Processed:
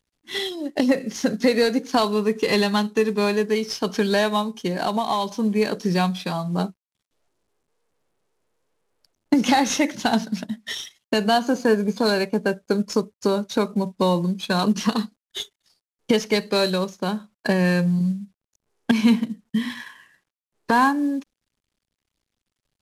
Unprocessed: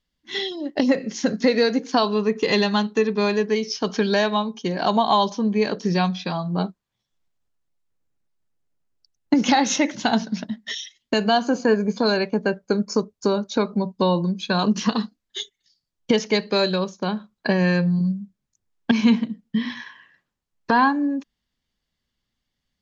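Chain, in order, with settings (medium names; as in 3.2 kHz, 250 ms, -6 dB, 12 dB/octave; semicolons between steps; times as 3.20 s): CVSD coder 64 kbps; 4.80–5.39 s: compression 2.5:1, threshold -21 dBFS, peak gain reduction 5.5 dB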